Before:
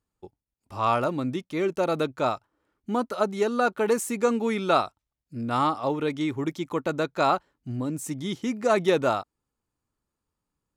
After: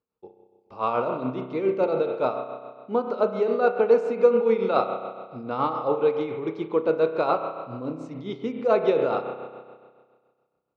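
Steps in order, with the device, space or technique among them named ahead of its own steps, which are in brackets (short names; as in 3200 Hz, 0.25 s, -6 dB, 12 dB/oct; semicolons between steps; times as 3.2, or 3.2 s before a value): combo amplifier with spring reverb and tremolo (spring tank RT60 1.7 s, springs 31 ms, chirp 50 ms, DRR 4 dB; tremolo 7.1 Hz, depth 54%; speaker cabinet 100–4000 Hz, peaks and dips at 100 Hz -10 dB, 170 Hz -4 dB, 290 Hz -3 dB, 470 Hz +9 dB, 1800 Hz -10 dB, 3300 Hz -7 dB)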